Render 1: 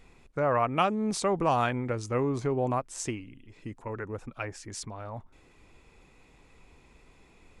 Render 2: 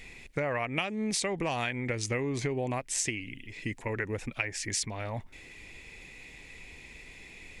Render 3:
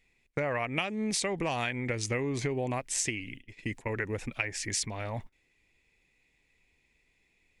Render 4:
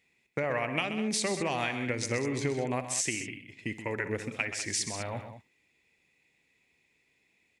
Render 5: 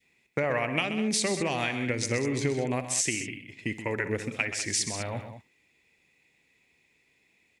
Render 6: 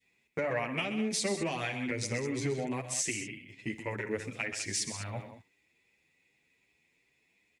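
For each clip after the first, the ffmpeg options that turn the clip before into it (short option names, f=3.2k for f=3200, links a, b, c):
-af "highshelf=f=1.6k:t=q:w=3:g=7,acompressor=threshold=-32dB:ratio=10,volume=4.5dB"
-af "agate=range=-22dB:threshold=-42dB:ratio=16:detection=peak"
-filter_complex "[0:a]highpass=120,asplit=2[a][b];[b]aecho=0:1:60|128|199:0.178|0.316|0.237[c];[a][c]amix=inputs=2:normalize=0"
-af "adynamicequalizer=threshold=0.00501:dfrequency=1000:dqfactor=0.89:tfrequency=1000:tqfactor=0.89:attack=5:release=100:ratio=0.375:range=2:mode=cutabove:tftype=bell,volume=3.5dB"
-filter_complex "[0:a]asplit=2[a][b];[b]asoftclip=type=tanh:threshold=-19dB,volume=-9dB[c];[a][c]amix=inputs=2:normalize=0,asplit=2[d][e];[e]adelay=8.7,afreqshift=2.6[f];[d][f]amix=inputs=2:normalize=1,volume=-4.5dB"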